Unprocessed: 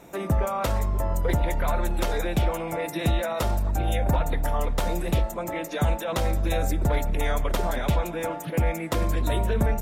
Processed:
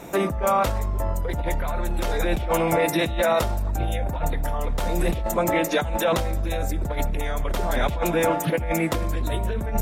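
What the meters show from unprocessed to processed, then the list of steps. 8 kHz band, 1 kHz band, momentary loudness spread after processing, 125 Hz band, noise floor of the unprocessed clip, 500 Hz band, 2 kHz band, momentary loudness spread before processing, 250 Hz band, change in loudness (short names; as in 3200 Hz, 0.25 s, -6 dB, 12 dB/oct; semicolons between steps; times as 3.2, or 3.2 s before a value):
+3.5 dB, +3.5 dB, 6 LU, -1.5 dB, -35 dBFS, +4.5 dB, +4.0 dB, 2 LU, +2.5 dB, +2.0 dB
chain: negative-ratio compressor -28 dBFS, ratio -1; gain +5 dB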